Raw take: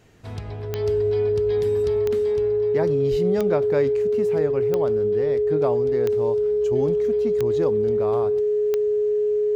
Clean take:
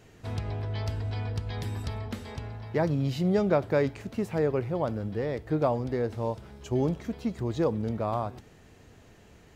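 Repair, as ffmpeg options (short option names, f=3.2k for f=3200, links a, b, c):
-filter_complex "[0:a]adeclick=t=4,bandreject=f=420:w=30,asplit=3[a][b][c];[a]afade=t=out:st=3.1:d=0.02[d];[b]highpass=f=140:w=0.5412,highpass=f=140:w=1.3066,afade=t=in:st=3.1:d=0.02,afade=t=out:st=3.22:d=0.02[e];[c]afade=t=in:st=3.22:d=0.02[f];[d][e][f]amix=inputs=3:normalize=0"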